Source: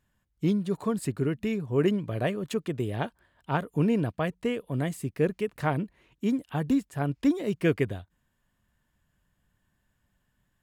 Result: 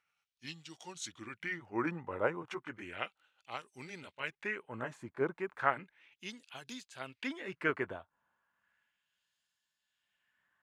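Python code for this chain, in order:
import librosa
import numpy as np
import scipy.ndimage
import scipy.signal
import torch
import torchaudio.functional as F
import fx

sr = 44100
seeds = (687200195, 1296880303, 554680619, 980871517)

y = fx.pitch_glide(x, sr, semitones=-4.0, runs='ending unshifted')
y = fx.filter_lfo_bandpass(y, sr, shape='sine', hz=0.34, low_hz=980.0, high_hz=4600.0, q=1.7)
y = F.gain(torch.from_numpy(y), 5.5).numpy()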